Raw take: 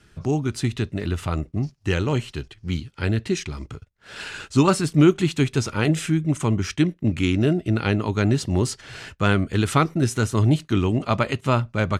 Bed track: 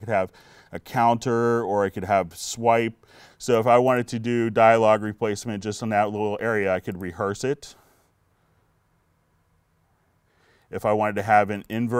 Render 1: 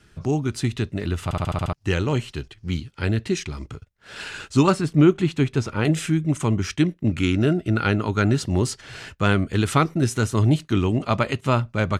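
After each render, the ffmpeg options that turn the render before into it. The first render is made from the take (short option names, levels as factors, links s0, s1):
-filter_complex "[0:a]asettb=1/sr,asplit=3[s0][s1][s2];[s0]atrim=end=4.724[s3];[s1]atrim=start=4.72:end=5.85,asetpts=PTS-STARTPTS,afade=t=in:d=0.004:c=qsin,afade=t=out:st=1.126:d=0.004:c=qsin,highshelf=f=3700:g=-10[s4];[s2]atrim=start=5.846[s5];[s3][s4]acrossfade=d=0.004:c1=hsin:c2=qsin[s6];[s6][s5]acrossfade=d=0.004:c1=qsin:c2=hsin,asettb=1/sr,asplit=3[s7][s8][s9];[s7]atrim=end=7.094[s10];[s8]atrim=start=7.09:end=8.47,asetpts=PTS-STARTPTS,afade=t=in:d=0.004:c=qsin,afade=t=out:st=1.376:d=0.004:c=qsin,equalizer=f=1400:t=o:w=0.25:g=7.5[s11];[s9]atrim=start=8.466[s12];[s10][s11]acrossfade=d=0.004:c1=hsin:c2=qsin[s13];[s13][s12]acrossfade=d=0.004:c1=qsin:c2=hsin,asplit=8[s14][s15][s16][s17][s18][s19][s20][s21];[s14]atrim=end=1.312[s22];[s15]atrim=start=1.238:end=1.312[s23];[s16]atrim=start=1.238:end=1.312[s24];[s17]atrim=start=1.238:end=1.312[s25];[s18]atrim=start=1.238:end=1.312[s26];[s19]atrim=start=1.238:end=1.312[s27];[s20]atrim=start=1.238:end=1.312[s28];[s21]atrim=start=1.728[s29];[s22][s23]acrossfade=d=0.004:c1=hsin:c2=hsin[s30];[s30][s24]acrossfade=d=0.004:c1=hsin:c2=hsin[s31];[s31][s25]acrossfade=d=0.004:c1=hsin:c2=hsin[s32];[s32][s26]acrossfade=d=0.004:c1=hsin:c2=hsin[s33];[s33][s27]acrossfade=d=0.004:c1=hsin:c2=hsin[s34];[s34][s28]acrossfade=d=0.004:c1=hsin:c2=hsin[s35];[s35][s29]acrossfade=d=0.004:c1=hsin:c2=hsin"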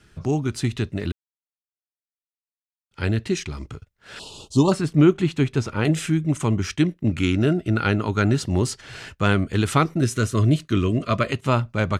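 -filter_complex "[0:a]asettb=1/sr,asplit=3[s0][s1][s2];[s0]atrim=end=4.194[s3];[s1]atrim=start=4.19:end=4.72,asetpts=PTS-STARTPTS,afade=t=in:d=0.004:c=qsin,afade=t=out:st=0.526:d=0.004:c=qsin,asuperstop=centerf=1800:order=8:qfactor=0.89[s4];[s2]atrim=start=4.716[s5];[s3][s4]acrossfade=d=0.004:c1=hsin:c2=qsin[s6];[s6][s5]acrossfade=d=0.004:c1=qsin:c2=hsin,asettb=1/sr,asplit=3[s7][s8][s9];[s7]atrim=end=10.014[s10];[s8]atrim=start=10.01:end=11.32,asetpts=PTS-STARTPTS,afade=t=in:d=0.004:c=qsin,afade=t=out:st=1.306:d=0.004:c=qsin,asuperstop=centerf=840:order=20:qfactor=3.2[s11];[s9]atrim=start=11.316[s12];[s10][s11]acrossfade=d=0.004:c1=hsin:c2=qsin[s13];[s13][s12]acrossfade=d=0.004:c1=qsin:c2=hsin,asplit=3[s14][s15][s16];[s14]atrim=end=1.12,asetpts=PTS-STARTPTS,afade=t=out:st=1.116:d=0.004:c=hsin[s17];[s15]atrim=start=1.12:end=2.91,asetpts=PTS-STARTPTS,volume=0[s18];[s16]atrim=start=2.91,asetpts=PTS-STARTPTS,afade=t=in:d=0.004:c=hsin[s19];[s17][s18][s19]concat=n=3:v=0:a=1"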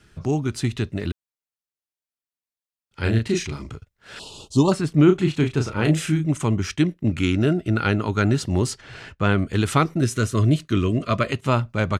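-filter_complex "[0:a]asettb=1/sr,asplit=3[s0][s1][s2];[s0]atrim=end=3.014[s3];[s1]atrim=start=3.01:end=3.73,asetpts=PTS-STARTPTS,afade=t=in:d=0.004:c=qsin,afade=t=out:st=0.716:d=0.004:c=qsin,asplit=2[s4][s5];[s5]adelay=35,volume=0.708[s6];[s4][s6]amix=inputs=2:normalize=0,atrim=end_sample=31752[s7];[s2]atrim=start=3.726[s8];[s3][s7]acrossfade=d=0.004:c1=hsin:c2=qsin[s9];[s9][s8]acrossfade=d=0.004:c1=qsin:c2=hsin,asplit=3[s10][s11][s12];[s10]afade=t=out:st=5.07:d=0.02[s13];[s11]asplit=2[s14][s15];[s15]adelay=33,volume=0.501[s16];[s14][s16]amix=inputs=2:normalize=0,afade=t=in:st=5.07:d=0.02,afade=t=out:st=6.29:d=0.02[s17];[s12]afade=t=in:st=6.29:d=0.02[s18];[s13][s17][s18]amix=inputs=3:normalize=0,asettb=1/sr,asplit=3[s19][s20][s21];[s19]atrim=end=8.784[s22];[s20]atrim=start=8.78:end=9.38,asetpts=PTS-STARTPTS,afade=t=in:d=0.004:c=qsin,afade=t=out:st=0.596:d=0.004:c=qsin,lowpass=f=3000:p=1[s23];[s21]atrim=start=9.376[s24];[s22][s23]acrossfade=d=0.004:c1=hsin:c2=qsin[s25];[s25][s24]acrossfade=d=0.004:c1=qsin:c2=hsin"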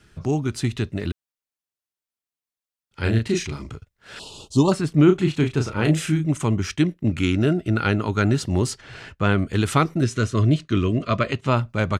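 -filter_complex "[0:a]asettb=1/sr,asplit=3[s0][s1][s2];[s0]atrim=end=10.034[s3];[s1]atrim=start=10.03:end=11.57,asetpts=PTS-STARTPTS,afade=t=in:d=0.004:c=qsin,afade=t=out:st=1.536:d=0.004:c=qsin,lowpass=6500[s4];[s2]atrim=start=11.566[s5];[s3][s4]acrossfade=d=0.004:c1=hsin:c2=qsin[s6];[s6][s5]acrossfade=d=0.004:c1=qsin:c2=hsin"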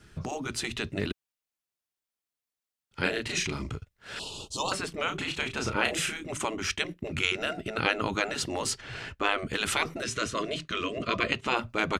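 -af "afftfilt=real='re*lt(hypot(re,im),0.316)':imag='im*lt(hypot(re,im),0.316)':win_size=1024:overlap=0.75,adynamicequalizer=threshold=0.00794:dfrequency=2700:dqfactor=1.8:tfrequency=2700:tqfactor=1.8:attack=5:release=100:ratio=0.375:range=1.5:mode=boostabove:tftype=bell"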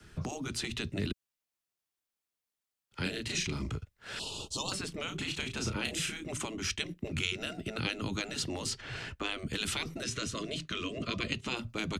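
-filter_complex "[0:a]acrossover=split=140|650|5300[s0][s1][s2][s3];[s3]alimiter=level_in=2.11:limit=0.0631:level=0:latency=1:release=263,volume=0.473[s4];[s0][s1][s2][s4]amix=inputs=4:normalize=0,acrossover=split=300|3000[s5][s6][s7];[s6]acompressor=threshold=0.00891:ratio=6[s8];[s5][s8][s7]amix=inputs=3:normalize=0"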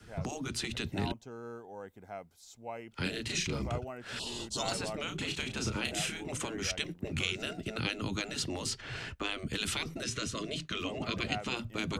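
-filter_complex "[1:a]volume=0.0708[s0];[0:a][s0]amix=inputs=2:normalize=0"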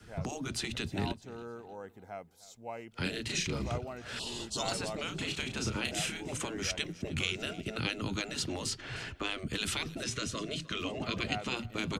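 -af "aecho=1:1:307|614|921:0.1|0.036|0.013"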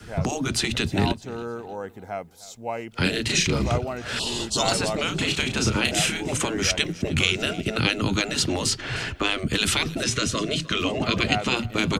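-af "volume=3.76"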